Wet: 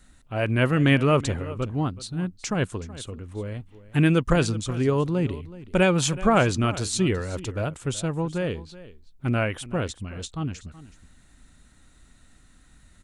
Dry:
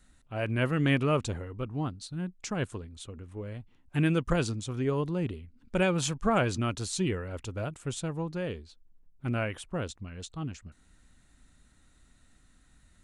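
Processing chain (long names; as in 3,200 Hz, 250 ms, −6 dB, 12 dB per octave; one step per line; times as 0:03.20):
single-tap delay 374 ms −17.5 dB
level +6.5 dB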